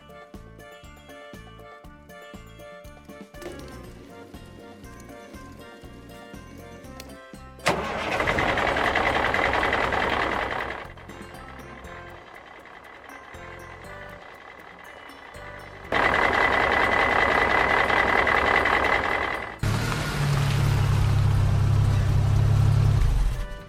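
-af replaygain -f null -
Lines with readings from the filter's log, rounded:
track_gain = +5.3 dB
track_peak = 0.350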